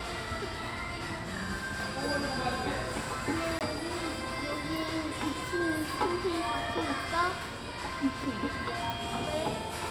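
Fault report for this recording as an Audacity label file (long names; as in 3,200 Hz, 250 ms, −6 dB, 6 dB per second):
3.590000	3.610000	drop-out 18 ms
8.900000	8.900000	click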